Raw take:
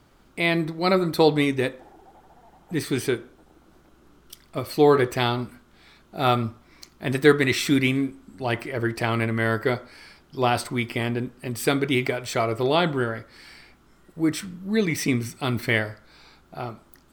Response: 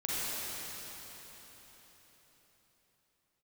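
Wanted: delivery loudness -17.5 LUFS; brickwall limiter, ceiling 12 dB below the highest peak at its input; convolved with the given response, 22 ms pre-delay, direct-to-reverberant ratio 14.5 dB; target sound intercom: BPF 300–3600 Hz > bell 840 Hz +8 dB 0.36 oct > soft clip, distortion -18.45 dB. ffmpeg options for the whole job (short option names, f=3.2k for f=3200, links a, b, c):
-filter_complex "[0:a]alimiter=limit=-14.5dB:level=0:latency=1,asplit=2[a][b];[1:a]atrim=start_sample=2205,adelay=22[c];[b][c]afir=irnorm=-1:irlink=0,volume=-22dB[d];[a][d]amix=inputs=2:normalize=0,highpass=300,lowpass=3.6k,equalizer=f=840:t=o:w=0.36:g=8,asoftclip=threshold=-16dB,volume=12dB"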